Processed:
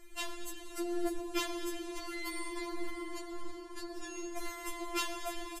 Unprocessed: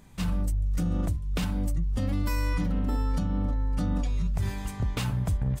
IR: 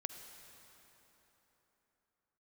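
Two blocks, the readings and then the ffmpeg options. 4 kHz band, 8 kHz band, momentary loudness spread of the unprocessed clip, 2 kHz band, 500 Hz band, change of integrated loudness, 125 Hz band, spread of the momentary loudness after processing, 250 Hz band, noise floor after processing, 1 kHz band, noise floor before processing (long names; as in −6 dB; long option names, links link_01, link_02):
+1.0 dB, +1.0 dB, 2 LU, −0.5 dB, +0.5 dB, −10.0 dB, below −35 dB, 9 LU, −9.0 dB, −47 dBFS, −2.0 dB, −38 dBFS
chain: -filter_complex "[0:a]bandreject=frequency=84.79:width_type=h:width=4,bandreject=frequency=169.58:width_type=h:width=4,bandreject=frequency=254.37:width_type=h:width=4,acrossover=split=110|1000[link_01][link_02][link_03];[link_01]asoftclip=type=tanh:threshold=-28dB[link_04];[link_02]asplit=7[link_05][link_06][link_07][link_08][link_09][link_10][link_11];[link_06]adelay=136,afreqshift=32,volume=-13.5dB[link_12];[link_07]adelay=272,afreqshift=64,volume=-18.5dB[link_13];[link_08]adelay=408,afreqshift=96,volume=-23.6dB[link_14];[link_09]adelay=544,afreqshift=128,volume=-28.6dB[link_15];[link_10]adelay=680,afreqshift=160,volume=-33.6dB[link_16];[link_11]adelay=816,afreqshift=192,volume=-38.7dB[link_17];[link_05][link_12][link_13][link_14][link_15][link_16][link_17]amix=inputs=7:normalize=0[link_18];[link_04][link_18][link_03]amix=inputs=3:normalize=0[link_19];[1:a]atrim=start_sample=2205,asetrate=25137,aresample=44100[link_20];[link_19][link_20]afir=irnorm=-1:irlink=0,afftfilt=real='re*4*eq(mod(b,16),0)':imag='im*4*eq(mod(b,16),0)':win_size=2048:overlap=0.75,volume=3dB"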